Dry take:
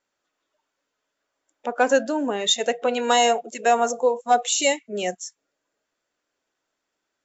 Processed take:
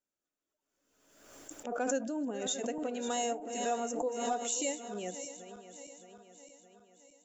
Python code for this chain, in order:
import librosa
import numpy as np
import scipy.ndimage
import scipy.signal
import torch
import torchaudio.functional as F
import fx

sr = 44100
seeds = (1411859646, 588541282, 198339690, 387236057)

y = fx.reverse_delay_fb(x, sr, ms=309, feedback_pct=72, wet_db=-12)
y = fx.graphic_eq(y, sr, hz=(125, 500, 1000, 2000, 4000), db=(-3, -5, -10, -9, -10))
y = fx.pre_swell(y, sr, db_per_s=49.0)
y = y * librosa.db_to_amplitude(-7.5)